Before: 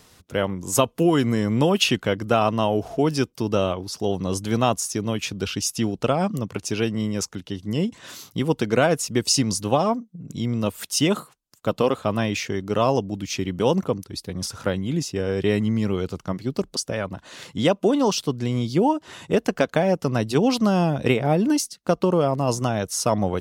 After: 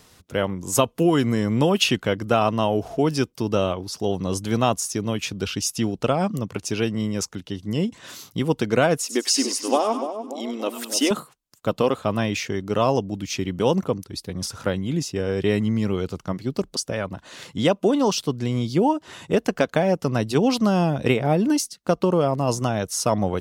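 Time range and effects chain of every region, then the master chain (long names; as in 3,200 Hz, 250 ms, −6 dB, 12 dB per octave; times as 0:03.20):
0:08.98–0:11.11: de-essing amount 30% + linear-phase brick-wall high-pass 230 Hz + echo with a time of its own for lows and highs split 830 Hz, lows 291 ms, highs 98 ms, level −8 dB
whole clip: no processing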